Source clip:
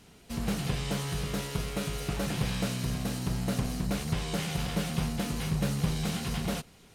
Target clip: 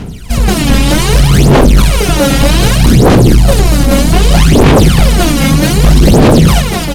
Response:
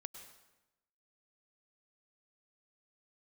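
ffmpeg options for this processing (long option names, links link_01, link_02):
-af "lowshelf=frequency=250:gain=7,aecho=1:1:240|396|497.4|563.3|606.2:0.631|0.398|0.251|0.158|0.1,aphaser=in_gain=1:out_gain=1:delay=3.7:decay=0.79:speed=0.64:type=sinusoidal,aeval=exprs='1*sin(PI/2*5.62*val(0)/1)':channel_layout=same,volume=-1dB"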